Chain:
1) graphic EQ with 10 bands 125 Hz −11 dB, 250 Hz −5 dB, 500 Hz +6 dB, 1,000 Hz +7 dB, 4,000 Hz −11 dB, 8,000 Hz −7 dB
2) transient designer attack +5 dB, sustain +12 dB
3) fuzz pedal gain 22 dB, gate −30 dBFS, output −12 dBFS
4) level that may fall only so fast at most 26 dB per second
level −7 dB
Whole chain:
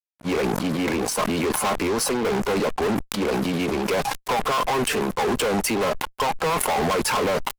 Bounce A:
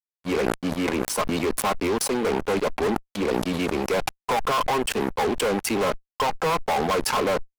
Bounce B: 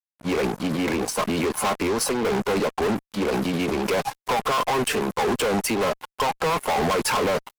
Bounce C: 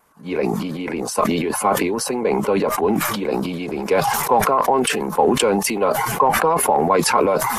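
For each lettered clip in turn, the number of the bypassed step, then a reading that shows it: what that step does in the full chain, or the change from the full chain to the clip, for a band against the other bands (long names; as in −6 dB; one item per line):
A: 2, change in crest factor −2.5 dB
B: 4, change in crest factor −15.0 dB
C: 3, distortion level −3 dB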